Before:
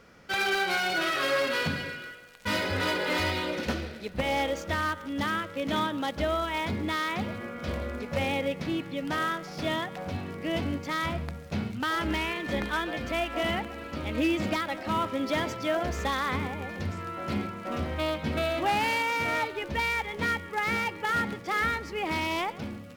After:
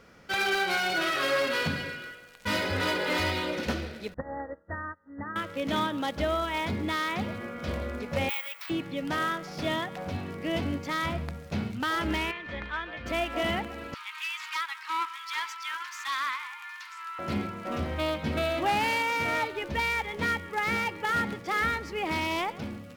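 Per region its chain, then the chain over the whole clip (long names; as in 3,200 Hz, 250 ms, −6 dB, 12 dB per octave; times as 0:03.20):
0:04.14–0:05.36: linear-phase brick-wall low-pass 2,000 Hz + tuned comb filter 97 Hz, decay 0.19 s, harmonics odd, mix 50% + expander for the loud parts 2.5 to 1, over −45 dBFS
0:08.29–0:08.70: Chebyshev high-pass filter 1,100 Hz, order 3 + bad sample-rate conversion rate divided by 2×, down filtered, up zero stuff
0:12.31–0:13.06: low-pass filter 2,600 Hz + parametric band 290 Hz −12 dB 2.8 octaves + notch filter 770 Hz, Q 7.8
0:13.94–0:17.19: Butterworth high-pass 930 Hz 96 dB per octave + highs frequency-modulated by the lows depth 0.18 ms
whole clip: no processing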